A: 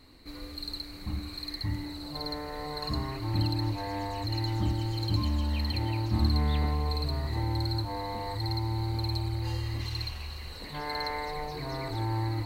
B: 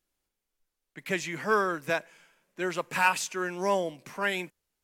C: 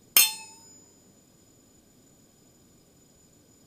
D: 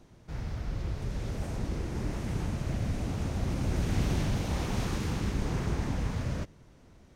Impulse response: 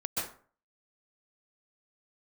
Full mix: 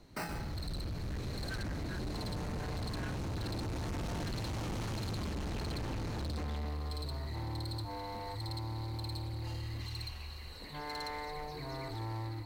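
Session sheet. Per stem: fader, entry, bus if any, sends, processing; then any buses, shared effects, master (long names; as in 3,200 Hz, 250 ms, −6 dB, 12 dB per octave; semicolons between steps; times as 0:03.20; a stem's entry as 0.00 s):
−10.0 dB, 0.00 s, no send, automatic gain control gain up to 4 dB
−18.5 dB, 0.00 s, no send, four-pole ladder high-pass 1,500 Hz, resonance 85%
−12.5 dB, 0.00 s, send −13.5 dB, resonant band-pass 2,800 Hz, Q 0.51; decimation without filtering 13×
−5.5 dB, 0.00 s, send −7.5 dB, no processing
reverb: on, RT60 0.45 s, pre-delay 117 ms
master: hard clipping −35.5 dBFS, distortion −6 dB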